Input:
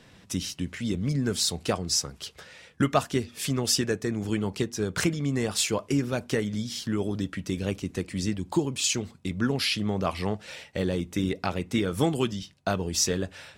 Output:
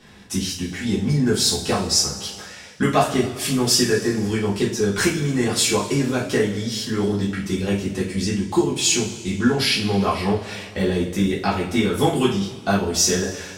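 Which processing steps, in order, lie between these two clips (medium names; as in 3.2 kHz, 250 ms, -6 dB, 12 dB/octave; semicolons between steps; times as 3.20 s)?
0.70–2.40 s: mains buzz 100 Hz, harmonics 9, -54 dBFS -1 dB/octave; two-slope reverb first 0.36 s, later 2 s, from -17 dB, DRR -7 dB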